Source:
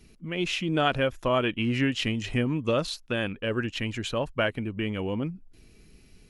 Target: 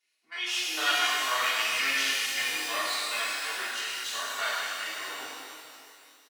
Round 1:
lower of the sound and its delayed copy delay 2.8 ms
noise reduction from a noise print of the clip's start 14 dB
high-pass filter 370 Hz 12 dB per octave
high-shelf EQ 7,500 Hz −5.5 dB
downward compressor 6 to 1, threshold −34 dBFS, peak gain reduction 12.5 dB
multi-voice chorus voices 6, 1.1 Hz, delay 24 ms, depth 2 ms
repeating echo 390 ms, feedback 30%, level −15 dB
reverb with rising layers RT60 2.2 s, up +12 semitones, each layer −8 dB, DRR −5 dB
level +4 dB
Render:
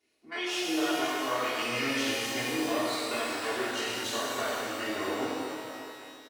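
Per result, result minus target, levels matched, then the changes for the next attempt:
downward compressor: peak gain reduction +12.5 dB; 500 Hz band +12.0 dB
remove: downward compressor 6 to 1, threshold −34 dBFS, peak gain reduction 12.5 dB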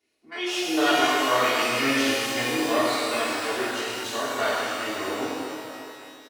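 500 Hz band +12.0 dB
change: high-pass filter 1,400 Hz 12 dB per octave

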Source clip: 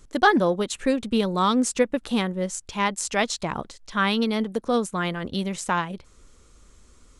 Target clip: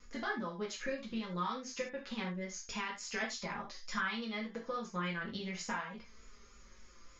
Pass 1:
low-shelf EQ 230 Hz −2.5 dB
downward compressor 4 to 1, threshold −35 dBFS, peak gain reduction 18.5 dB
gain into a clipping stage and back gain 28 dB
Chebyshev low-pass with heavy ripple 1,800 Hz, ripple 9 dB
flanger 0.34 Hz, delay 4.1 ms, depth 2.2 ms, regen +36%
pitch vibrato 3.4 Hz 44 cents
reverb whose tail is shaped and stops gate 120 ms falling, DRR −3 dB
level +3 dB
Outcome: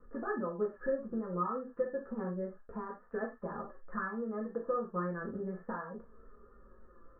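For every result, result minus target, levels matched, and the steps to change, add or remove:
gain into a clipping stage and back: distortion +32 dB; 2,000 Hz band −7.5 dB
change: gain into a clipping stage and back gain 21.5 dB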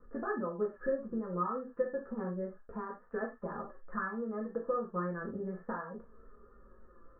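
2,000 Hz band −7.0 dB
change: Chebyshev low-pass with heavy ripple 6,900 Hz, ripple 9 dB

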